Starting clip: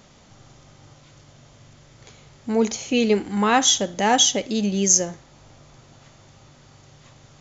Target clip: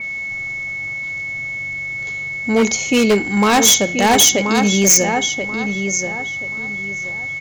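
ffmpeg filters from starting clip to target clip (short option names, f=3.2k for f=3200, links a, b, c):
-filter_complex "[0:a]asplit=2[a][b];[b]adelay=1031,lowpass=f=3k:p=1,volume=-7.5dB,asplit=2[c][d];[d]adelay=1031,lowpass=f=3k:p=1,volume=0.27,asplit=2[e][f];[f]adelay=1031,lowpass=f=3k:p=1,volume=0.27[g];[c][e][g]amix=inputs=3:normalize=0[h];[a][h]amix=inputs=2:normalize=0,acontrast=65,aeval=exprs='val(0)+0.0708*sin(2*PI*2200*n/s)':c=same,aeval=exprs='0.422*(abs(mod(val(0)/0.422+3,4)-2)-1)':c=same,adynamicequalizer=threshold=0.0251:dfrequency=5300:dqfactor=0.7:tfrequency=5300:tqfactor=0.7:attack=5:release=100:ratio=0.375:range=2.5:mode=boostabove:tftype=highshelf"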